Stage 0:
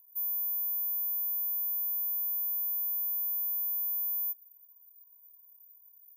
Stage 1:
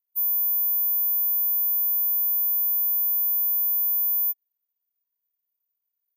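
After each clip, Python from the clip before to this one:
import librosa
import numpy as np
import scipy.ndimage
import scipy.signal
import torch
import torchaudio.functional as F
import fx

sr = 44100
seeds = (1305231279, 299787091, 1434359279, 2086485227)

y = fx.upward_expand(x, sr, threshold_db=-54.0, expansion=2.5)
y = F.gain(torch.from_numpy(y), 9.0).numpy()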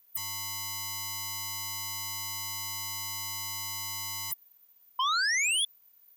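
y = 10.0 ** (-24.0 / 20.0) * np.tanh(x / 10.0 ** (-24.0 / 20.0))
y = fx.spec_paint(y, sr, seeds[0], shape='rise', start_s=4.99, length_s=0.66, low_hz=1000.0, high_hz=3500.0, level_db=-39.0)
y = fx.fold_sine(y, sr, drive_db=17, ceiling_db=-24.0)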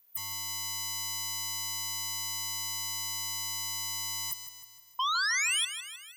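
y = fx.echo_feedback(x, sr, ms=156, feedback_pct=55, wet_db=-11.0)
y = F.gain(torch.from_numpy(y), -1.5).numpy()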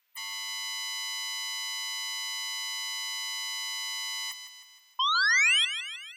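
y = fx.bandpass_q(x, sr, hz=2300.0, q=1.1)
y = F.gain(torch.from_numpy(y), 8.0).numpy()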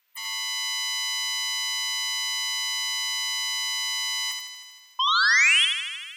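y = x + 10.0 ** (-4.5 / 20.0) * np.pad(x, (int(78 * sr / 1000.0), 0))[:len(x)]
y = F.gain(torch.from_numpy(y), 3.0).numpy()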